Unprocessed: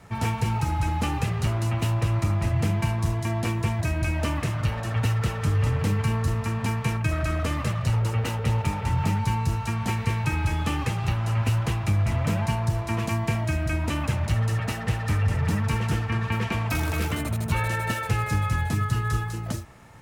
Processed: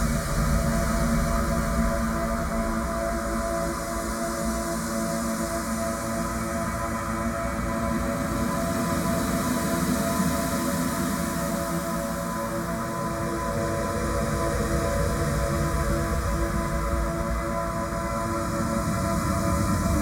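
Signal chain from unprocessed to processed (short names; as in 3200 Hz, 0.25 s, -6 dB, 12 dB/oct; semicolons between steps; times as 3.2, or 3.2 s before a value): fixed phaser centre 560 Hz, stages 8; Paulstretch 25×, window 0.25 s, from 1.45; echo with dull and thin repeats by turns 0.374 s, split 1300 Hz, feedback 72%, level -3 dB; gain +6.5 dB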